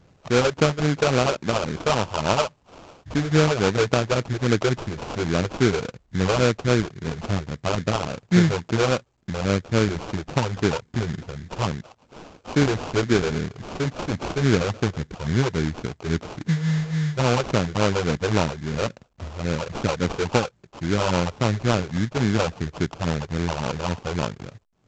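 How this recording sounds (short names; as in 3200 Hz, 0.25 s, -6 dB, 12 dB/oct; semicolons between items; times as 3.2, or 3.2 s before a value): phasing stages 8, 3.6 Hz, lowest notch 210–2700 Hz; aliases and images of a low sample rate 1900 Hz, jitter 20%; A-law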